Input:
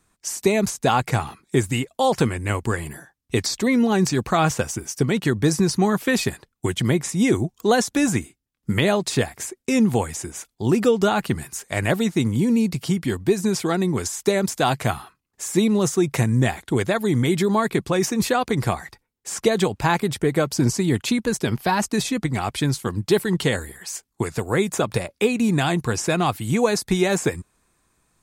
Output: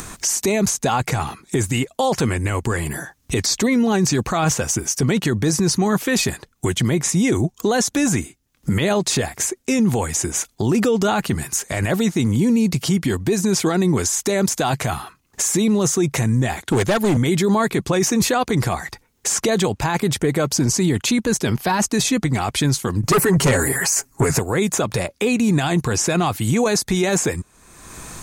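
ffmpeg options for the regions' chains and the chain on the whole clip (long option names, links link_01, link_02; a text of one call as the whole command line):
ffmpeg -i in.wav -filter_complex "[0:a]asettb=1/sr,asplit=3[link_01][link_02][link_03];[link_01]atrim=end=16.624[link_04];[link_02]atrim=start=16.62:end=17.17,asetpts=PTS-STARTPTS,afade=type=in:duration=0.004:curve=qsin,afade=type=out:start_time=0.546:duration=0.004:curve=qsin,highpass=frequency=75:width=0.5412,highpass=frequency=75:width=1.3066,volume=20dB,asoftclip=hard,volume=-20dB[link_05];[link_03]atrim=start=17.166[link_06];[link_04][link_05]acrossfade=duration=0.004:curve1=hsin:curve2=qsin[link_07];[link_07][link_06]acrossfade=duration=0.004:curve1=qsin:curve2=hsin,asettb=1/sr,asplit=3[link_08][link_09][link_10];[link_08]atrim=end=23.034[link_11];[link_09]atrim=start=23.03:end=24.39,asetpts=PTS-STARTPTS,afade=type=in:duration=0.004:curve=qsin,afade=type=out:start_time=1.356:duration=0.004:curve=qsin,equalizer=frequency=3500:width=2.4:gain=-14,aecho=1:1:7.3:0.97,atrim=end_sample=59976,aeval=exprs='0.668*sin(PI/2*2.82*val(0)/0.668)':channel_layout=same[link_12];[link_10]atrim=start=24.386[link_13];[link_11][link_12]acrossfade=duration=0.004:curve1=hsin:curve2=qsin[link_14];[link_14][link_13]acrossfade=duration=0.004:curve1=qsin:curve2=hsin,equalizer=frequency=6400:width=4.3:gain=5,acompressor=mode=upward:threshold=-21dB:ratio=2.5,alimiter=limit=-16.5dB:level=0:latency=1:release=11,volume=6dB" out.wav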